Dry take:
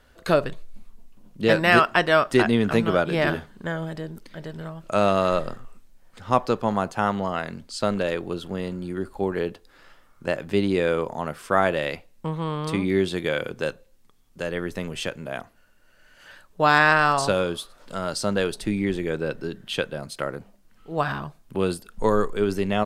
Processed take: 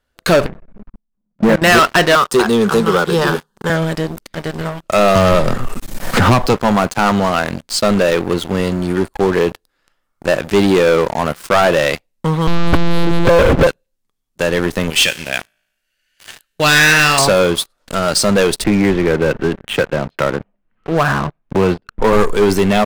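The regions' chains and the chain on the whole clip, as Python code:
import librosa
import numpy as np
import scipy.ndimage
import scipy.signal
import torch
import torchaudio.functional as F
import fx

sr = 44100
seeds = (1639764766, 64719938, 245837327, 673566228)

y = fx.chain(x, sr, fx.lowpass(hz=1800.0, slope=24),
    fx.peak_eq(hz=200.0, db=11.5, octaves=0.47),
    fx.level_steps(step_db=19), at=(0.46, 1.62))
y = fx.chain(y, sr, fx.low_shelf(hz=160.0, db=-10.0),
    fx.fixed_phaser(hz=430.0, stages=8),
    fx.band_squash(depth_pct=40), at=(2.15, 3.7))
y = fx.chain(y, sr, fx.low_shelf(hz=180.0, db=6.5),
    fx.band_squash(depth_pct=100), at=(5.15, 6.54))
y = fx.chain(y, sr, fx.lowpass(hz=1400.0, slope=24),
    fx.leveller(passes=5),
    fx.lpc_monotone(seeds[0], pitch_hz=170.0, order=8), at=(12.47, 13.67))
y = fx.chain(y, sr, fx.high_shelf_res(hz=1600.0, db=11.0, q=1.5),
    fx.comb_fb(f0_hz=55.0, decay_s=1.2, harmonics='all', damping=0.0, mix_pct=50), at=(14.9, 17.19))
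y = fx.chain(y, sr, fx.lowpass(hz=2600.0, slope=24),
    fx.band_squash(depth_pct=40), at=(18.64, 22.13))
y = fx.high_shelf(y, sr, hz=3100.0, db=3.5)
y = fx.leveller(y, sr, passes=5)
y = F.gain(torch.from_numpy(y), -4.5).numpy()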